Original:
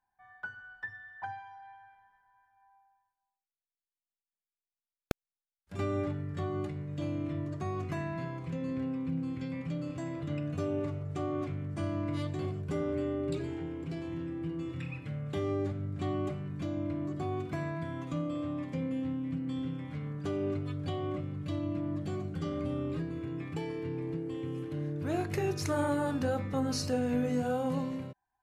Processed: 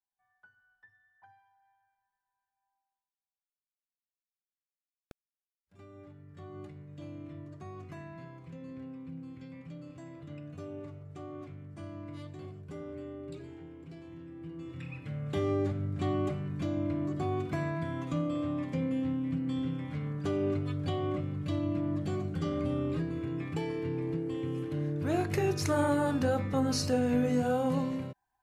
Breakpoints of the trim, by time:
5.92 s -20 dB
6.63 s -9.5 dB
14.25 s -9.5 dB
15.38 s +2.5 dB

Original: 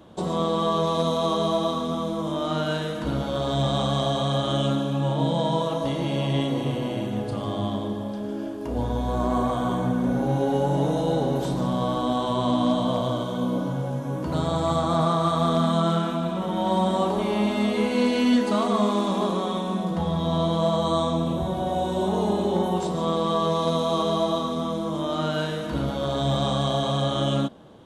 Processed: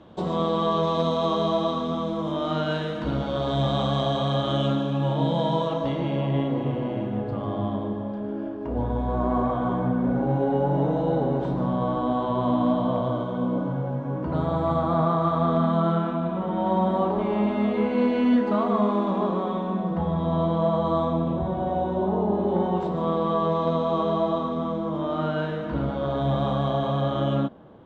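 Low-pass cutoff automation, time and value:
5.67 s 3.9 kHz
6.31 s 1.8 kHz
21.74 s 1.8 kHz
22.29 s 1.1 kHz
22.66 s 2 kHz

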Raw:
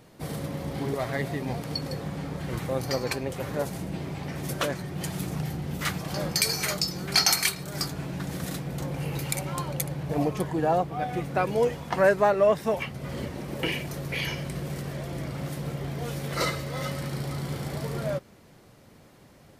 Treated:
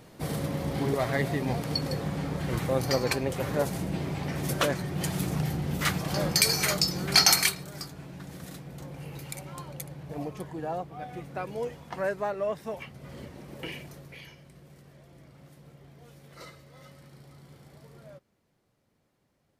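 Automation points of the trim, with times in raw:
7.40 s +2 dB
7.83 s -9.5 dB
13.83 s -9.5 dB
14.35 s -19.5 dB

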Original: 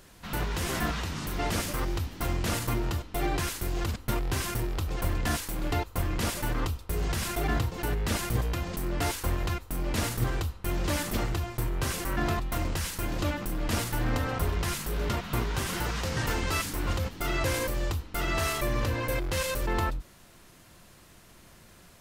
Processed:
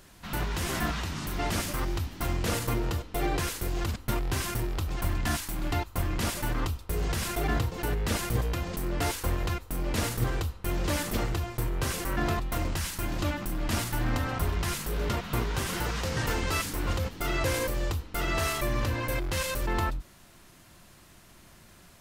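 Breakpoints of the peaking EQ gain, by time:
peaking EQ 480 Hz 0.24 oct
-5 dB
from 2.42 s +6.5 dB
from 3.68 s -2.5 dB
from 4.90 s -14 dB
from 5.93 s -3.5 dB
from 6.88 s +3 dB
from 12.70 s -7.5 dB
from 14.69 s +2.5 dB
from 18.48 s -5.5 dB

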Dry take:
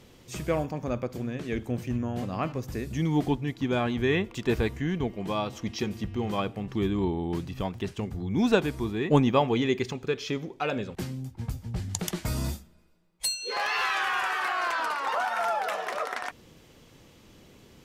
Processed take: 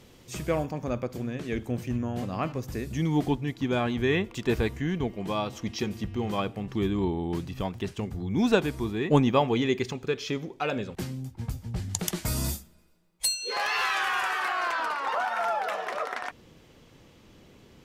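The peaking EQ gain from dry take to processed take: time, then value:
peaking EQ 12 kHz 1.9 oct
11.88 s +1.5 dB
12.51 s +11 dB
13.26 s +3.5 dB
14.20 s +3.5 dB
14.90 s -5.5 dB

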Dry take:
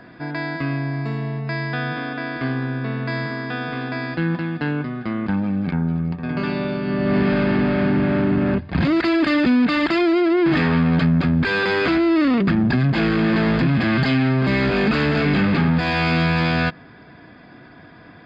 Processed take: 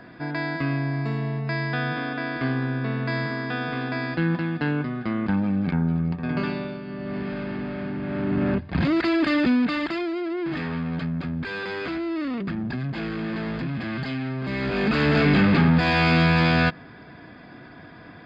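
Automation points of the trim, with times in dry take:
6.38 s -1.5 dB
6.86 s -12 dB
8.00 s -12 dB
8.42 s -3.5 dB
9.51 s -3.5 dB
10.12 s -11 dB
14.41 s -11 dB
15.14 s 0 dB

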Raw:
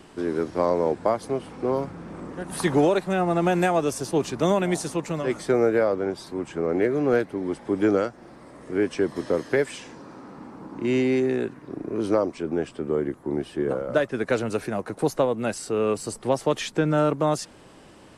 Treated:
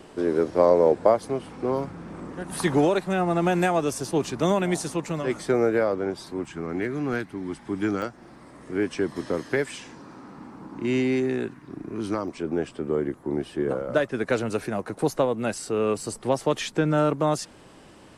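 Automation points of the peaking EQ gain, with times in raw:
peaking EQ 520 Hz 0.9 oct
+6 dB
from 1.19 s -2 dB
from 6.45 s -13.5 dB
from 8.02 s -5 dB
from 11.54 s -12 dB
from 12.28 s -1 dB

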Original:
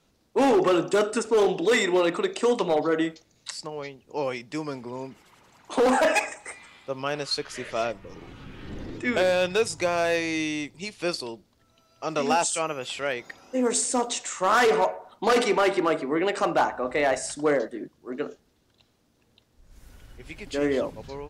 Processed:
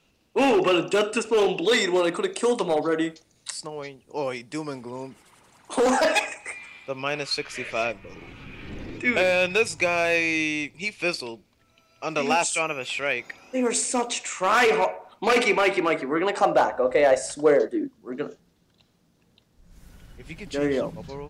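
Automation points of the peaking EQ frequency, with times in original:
peaking EQ +11.5 dB 0.34 oct
1.60 s 2.7 kHz
2.04 s 9.2 kHz
5.75 s 9.2 kHz
6.36 s 2.4 kHz
15.90 s 2.4 kHz
16.59 s 530 Hz
17.48 s 530 Hz
18.14 s 170 Hz

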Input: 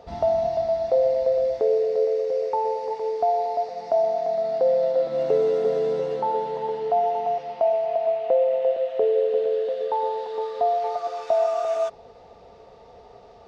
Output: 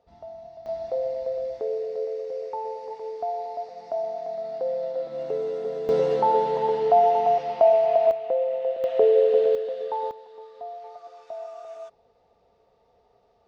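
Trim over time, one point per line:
-19.5 dB
from 0.66 s -7.5 dB
from 5.89 s +4 dB
from 8.11 s -4.5 dB
from 8.84 s +3 dB
from 9.55 s -4 dB
from 10.11 s -15.5 dB

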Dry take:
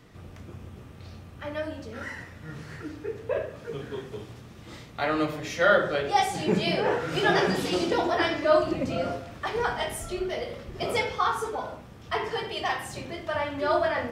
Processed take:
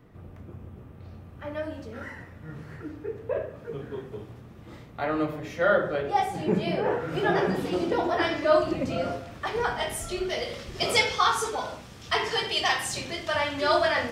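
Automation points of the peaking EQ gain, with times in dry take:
peaking EQ 5.8 kHz 2.7 oct
1.07 s -14.5 dB
1.79 s -3.5 dB
2.19 s -11 dB
7.79 s -11 dB
8.36 s 0 dB
9.74 s 0 dB
10.58 s +11.5 dB

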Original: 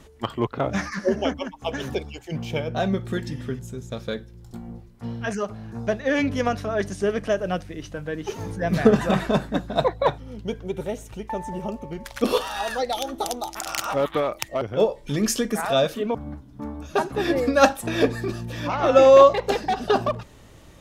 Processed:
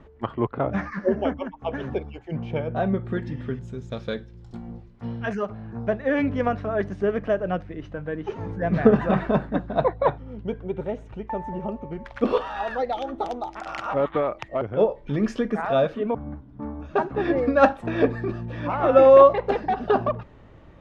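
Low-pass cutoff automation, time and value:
3.04 s 1.7 kHz
3.96 s 4.1 kHz
4.72 s 4.1 kHz
5.78 s 1.9 kHz

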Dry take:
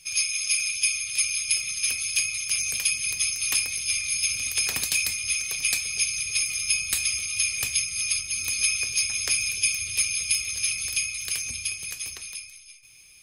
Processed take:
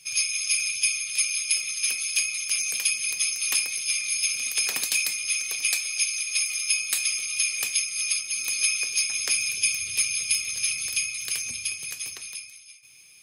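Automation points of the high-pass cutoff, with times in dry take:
0.83 s 110 Hz
1.26 s 260 Hz
5.55 s 260 Hz
5.99 s 830 Hz
7.08 s 290 Hz
8.91 s 290 Hz
9.68 s 130 Hz

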